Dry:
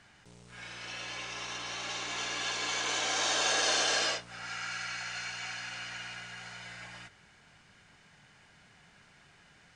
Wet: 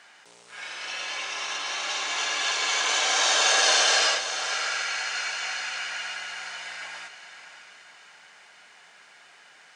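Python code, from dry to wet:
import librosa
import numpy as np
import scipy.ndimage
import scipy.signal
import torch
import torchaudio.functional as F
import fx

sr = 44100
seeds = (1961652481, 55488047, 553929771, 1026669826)

p1 = scipy.signal.sosfilt(scipy.signal.butter(2, 540.0, 'highpass', fs=sr, output='sos'), x)
p2 = p1 + fx.echo_diffused(p1, sr, ms=613, feedback_pct=42, wet_db=-10.5, dry=0)
y = p2 * 10.0 ** (8.0 / 20.0)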